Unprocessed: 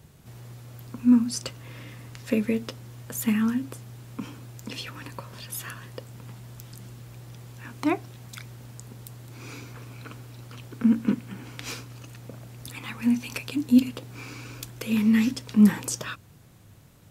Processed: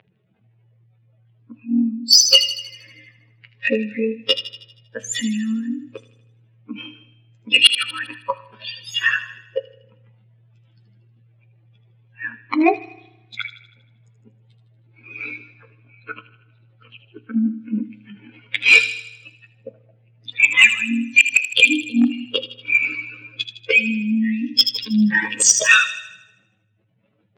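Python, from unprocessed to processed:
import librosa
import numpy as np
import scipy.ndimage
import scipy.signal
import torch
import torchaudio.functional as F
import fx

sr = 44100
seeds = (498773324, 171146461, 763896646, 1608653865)

p1 = fx.spec_expand(x, sr, power=2.5)
p2 = fx.env_lowpass(p1, sr, base_hz=1400.0, full_db=-23.0)
p3 = fx.high_shelf_res(p2, sr, hz=1700.0, db=14.0, q=1.5)
p4 = fx.rider(p3, sr, range_db=4, speed_s=2.0)
p5 = p3 + (p4 * 10.0 ** (2.0 / 20.0))
p6 = fx.stretch_grains(p5, sr, factor=1.6, grain_ms=49.0)
p7 = np.clip(p6, -10.0 ** (-2.5 / 20.0), 10.0 ** (-2.5 / 20.0))
p8 = scipy.signal.sosfilt(scipy.signal.cheby1(2, 1.0, [600.0, 3400.0], 'bandpass', fs=sr, output='sos'), p7)
p9 = fx.gate_flip(p8, sr, shuts_db=-8.0, range_db=-27)
p10 = fx.fold_sine(p9, sr, drive_db=5, ceiling_db=-7.5)
p11 = p10 + fx.echo_wet_highpass(p10, sr, ms=79, feedback_pct=52, hz=3000.0, wet_db=-7.5, dry=0)
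p12 = fx.rev_spring(p11, sr, rt60_s=1.0, pass_ms=(33,), chirp_ms=45, drr_db=18.0)
y = p12 * 10.0 ** (4.5 / 20.0)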